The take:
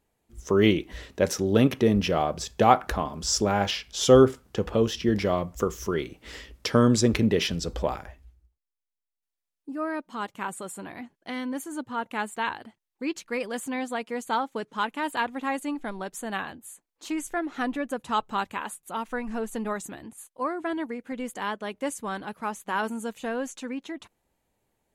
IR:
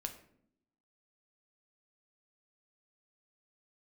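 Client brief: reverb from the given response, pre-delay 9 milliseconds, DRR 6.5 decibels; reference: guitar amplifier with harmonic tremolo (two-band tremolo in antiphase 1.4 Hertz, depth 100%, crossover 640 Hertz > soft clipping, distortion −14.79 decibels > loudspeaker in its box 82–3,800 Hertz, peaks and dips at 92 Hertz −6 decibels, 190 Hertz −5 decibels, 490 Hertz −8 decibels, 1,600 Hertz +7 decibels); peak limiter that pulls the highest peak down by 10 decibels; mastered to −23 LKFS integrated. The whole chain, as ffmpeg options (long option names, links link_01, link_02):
-filter_complex "[0:a]alimiter=limit=-13dB:level=0:latency=1,asplit=2[link_01][link_02];[1:a]atrim=start_sample=2205,adelay=9[link_03];[link_02][link_03]afir=irnorm=-1:irlink=0,volume=-5dB[link_04];[link_01][link_04]amix=inputs=2:normalize=0,acrossover=split=640[link_05][link_06];[link_05]aeval=exprs='val(0)*(1-1/2+1/2*cos(2*PI*1.4*n/s))':channel_layout=same[link_07];[link_06]aeval=exprs='val(0)*(1-1/2-1/2*cos(2*PI*1.4*n/s))':channel_layout=same[link_08];[link_07][link_08]amix=inputs=2:normalize=0,asoftclip=threshold=-19.5dB,highpass=82,equalizer=frequency=92:width_type=q:width=4:gain=-6,equalizer=frequency=190:width_type=q:width=4:gain=-5,equalizer=frequency=490:width_type=q:width=4:gain=-8,equalizer=frequency=1600:width_type=q:width=4:gain=7,lowpass=frequency=3800:width=0.5412,lowpass=frequency=3800:width=1.3066,volume=12dB"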